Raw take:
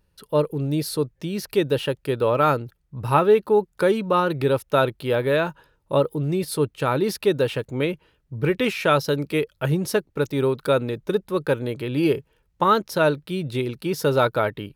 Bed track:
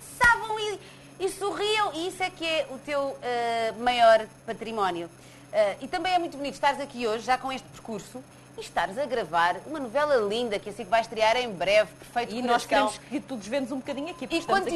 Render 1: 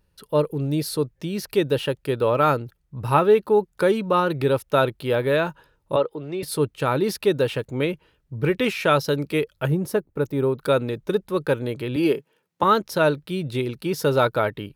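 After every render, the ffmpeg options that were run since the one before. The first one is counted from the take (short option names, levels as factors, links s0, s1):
-filter_complex "[0:a]asettb=1/sr,asplit=3[s0][s1][s2];[s0]atrim=end=5.964[s3];[s1]atrim=start=5.96:end=6.43,asetpts=PTS-STARTPTS,afade=t=in:d=0.004:c=qsin,afade=t=out:st=0.466:d=0.004:c=qsin,acrossover=split=340 4900:gain=0.2 1 0.0708[s4][s5][s6];[s4][s5][s6]amix=inputs=3:normalize=0[s7];[s2]atrim=start=6.426[s8];[s3][s7]acrossfade=d=0.004:c1=hsin:c2=qsin[s9];[s9][s8]acrossfade=d=0.004:c1=qsin:c2=hsin,asettb=1/sr,asplit=3[s10][s11][s12];[s10]atrim=end=9.674[s13];[s11]atrim=start=9.67:end=10.62,asetpts=PTS-STARTPTS,afade=t=in:d=0.004:c=qsin,afade=t=out:st=0.946:d=0.004:c=qsin,equalizer=f=4400:w=0.45:g=-10.5[s14];[s12]atrim=start=10.616[s15];[s13][s14]acrossfade=d=0.004:c1=hsin:c2=qsin[s16];[s16][s15]acrossfade=d=0.004:c1=qsin:c2=hsin,asettb=1/sr,asplit=3[s17][s18][s19];[s17]atrim=end=11.964[s20];[s18]atrim=start=11.96:end=12.63,asetpts=PTS-STARTPTS,afade=t=in:d=0.004:c=qsin,afade=t=out:st=0.666:d=0.004:c=qsin,highpass=f=170:w=0.5412,highpass=f=170:w=1.3066[s21];[s19]atrim=start=12.626[s22];[s20][s21]acrossfade=d=0.004:c1=hsin:c2=qsin[s23];[s23][s22]acrossfade=d=0.004:c1=qsin:c2=hsin"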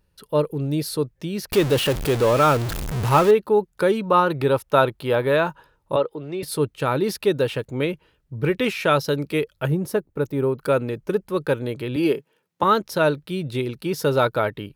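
-filter_complex "[0:a]asettb=1/sr,asplit=3[s0][s1][s2];[s0]atrim=end=1.524[s3];[s1]atrim=start=1.52:end=3.31,asetpts=PTS-STARTPTS,afade=t=in:d=0.004:c=qsin,afade=t=out:st=1.786:d=0.004:c=qsin,aeval=exprs='val(0)+0.5*0.0841*sgn(val(0))':c=same[s4];[s2]atrim=start=3.306[s5];[s3][s4]acrossfade=d=0.004:c1=hsin:c2=qsin[s6];[s6][s5]acrossfade=d=0.004:c1=qsin:c2=hsin,asettb=1/sr,asplit=3[s7][s8][s9];[s7]atrim=end=4.034[s10];[s8]atrim=start=4.03:end=5.94,asetpts=PTS-STARTPTS,afade=t=in:d=0.004:c=qsin,afade=t=out:st=1.906:d=0.004:c=qsin,equalizer=f=970:w=1.3:g=5[s11];[s9]atrim=start=5.936[s12];[s10][s11]acrossfade=d=0.004:c1=hsin:c2=qsin[s13];[s13][s12]acrossfade=d=0.004:c1=qsin:c2=hsin,asettb=1/sr,asplit=3[s14][s15][s16];[s14]atrim=end=10.354[s17];[s15]atrim=start=10.35:end=11.31,asetpts=PTS-STARTPTS,afade=t=in:d=0.004:c=qsin,afade=t=out:st=0.956:d=0.004:c=qsin,bandreject=f=3700:w=6.8[s18];[s16]atrim=start=11.306[s19];[s17][s18]acrossfade=d=0.004:c1=hsin:c2=qsin[s20];[s20][s19]acrossfade=d=0.004:c1=qsin:c2=hsin"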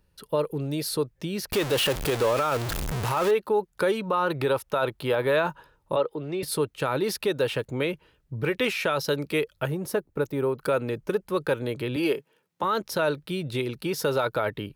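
-filter_complex "[0:a]acrossover=split=440[s0][s1];[s0]acompressor=threshold=0.0355:ratio=6[s2];[s2][s1]amix=inputs=2:normalize=0,alimiter=limit=0.178:level=0:latency=1:release=34"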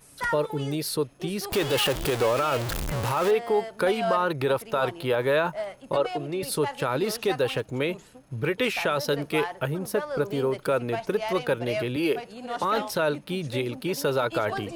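-filter_complex "[1:a]volume=0.335[s0];[0:a][s0]amix=inputs=2:normalize=0"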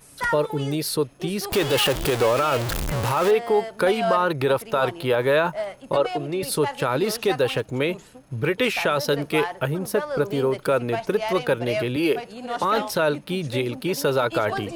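-af "volume=1.5"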